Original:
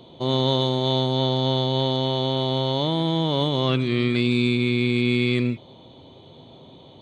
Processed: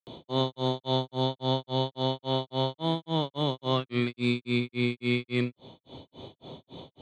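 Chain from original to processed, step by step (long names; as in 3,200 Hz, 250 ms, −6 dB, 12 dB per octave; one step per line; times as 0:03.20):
dynamic equaliser 1,000 Hz, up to +4 dB, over −34 dBFS, Q 0.77
granular cloud 247 ms, grains 3.6 per second, pitch spread up and down by 0 semitones
multiband upward and downward compressor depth 40%
level −3.5 dB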